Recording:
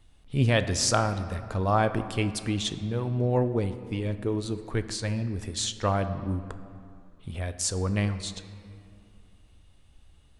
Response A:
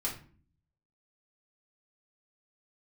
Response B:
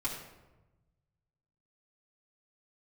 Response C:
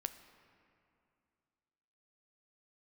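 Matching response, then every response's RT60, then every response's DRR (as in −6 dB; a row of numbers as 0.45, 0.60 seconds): C; 0.45, 1.1, 2.5 seconds; −5.0, −8.0, 9.5 decibels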